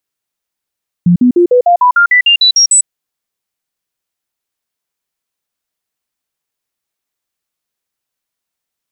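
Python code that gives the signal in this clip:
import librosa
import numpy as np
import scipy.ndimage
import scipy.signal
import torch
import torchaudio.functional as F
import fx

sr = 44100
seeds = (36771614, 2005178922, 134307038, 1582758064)

y = fx.stepped_sweep(sr, from_hz=175.0, direction='up', per_octave=2, tones=12, dwell_s=0.1, gap_s=0.05, level_db=-4.0)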